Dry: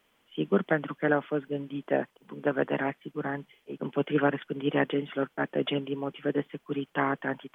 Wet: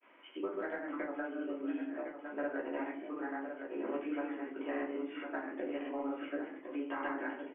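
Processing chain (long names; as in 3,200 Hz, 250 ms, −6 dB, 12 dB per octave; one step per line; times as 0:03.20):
elliptic band-pass filter 300–2,500 Hz, stop band 40 dB
downward compressor, threshold −33 dBFS, peak gain reduction 12.5 dB
granular cloud, pitch spread up and down by 0 semitones
single-tap delay 1,057 ms −9.5 dB
rectangular room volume 230 cubic metres, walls furnished, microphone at 2.8 metres
multiband upward and downward compressor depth 40%
level −6 dB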